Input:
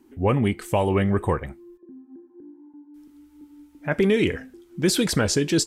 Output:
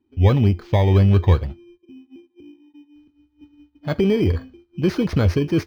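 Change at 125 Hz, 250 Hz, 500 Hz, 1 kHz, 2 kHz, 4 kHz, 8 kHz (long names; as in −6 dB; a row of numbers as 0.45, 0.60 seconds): +9.5 dB, +2.0 dB, +0.5 dB, −1.5 dB, −4.0 dB, −5.5 dB, below −15 dB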